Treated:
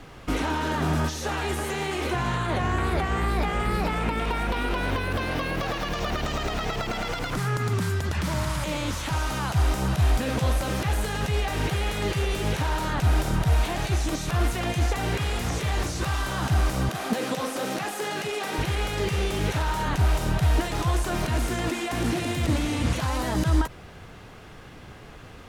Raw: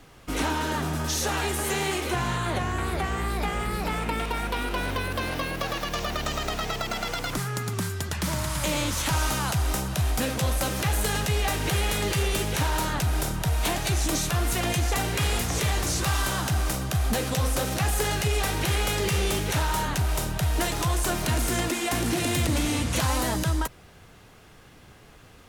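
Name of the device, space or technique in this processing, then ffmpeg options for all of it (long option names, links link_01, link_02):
de-esser from a sidechain: -filter_complex "[0:a]asettb=1/sr,asplit=3[link_01][link_02][link_03];[link_01]atrim=end=16.894[link_04];[link_02]atrim=start=16.89:end=18.58,asetpts=PTS-STARTPTS,afade=type=in:duration=0.004:curve=qsin,afade=type=out:start_time=1.686:duration=0.004:curve=qsin,highpass=frequency=190:width=0.5412,highpass=frequency=190:width=1.3066[link_05];[link_03]atrim=start=18.576[link_06];[link_04][link_05]acrossfade=duration=0.004:curve1=hsin:curve2=qsin[link_07];[link_07][link_06]acrossfade=duration=0.004:curve1=qsin:curve2=hsin,highshelf=frequency=5800:gain=-10.5,asplit=2[link_08][link_09];[link_09]highpass=frequency=4100:poles=1,apad=whole_len=1123829[link_10];[link_08][link_10]sidechaincompress=threshold=-41dB:ratio=8:attack=1.2:release=58,volume=7dB"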